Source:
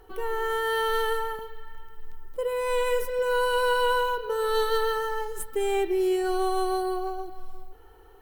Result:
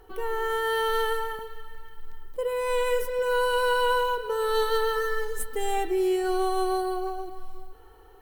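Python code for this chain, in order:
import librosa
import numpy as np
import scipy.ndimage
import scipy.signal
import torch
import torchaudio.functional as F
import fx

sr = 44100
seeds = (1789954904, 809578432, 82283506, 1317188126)

p1 = fx.comb(x, sr, ms=4.0, depth=0.79, at=(4.95, 5.9), fade=0.02)
y = p1 + fx.echo_thinned(p1, sr, ms=286, feedback_pct=55, hz=420.0, wet_db=-19, dry=0)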